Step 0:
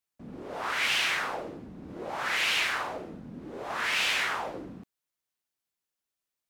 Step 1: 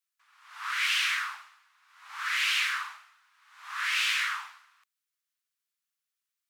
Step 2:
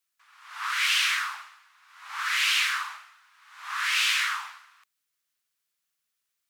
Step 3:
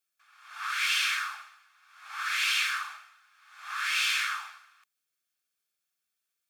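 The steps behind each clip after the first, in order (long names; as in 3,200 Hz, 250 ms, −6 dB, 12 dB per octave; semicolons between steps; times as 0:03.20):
Butterworth high-pass 1,100 Hz 48 dB per octave
dynamic equaliser 1,900 Hz, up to −4 dB, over −37 dBFS, Q 0.79; level +6 dB
notch comb filter 970 Hz; level −2 dB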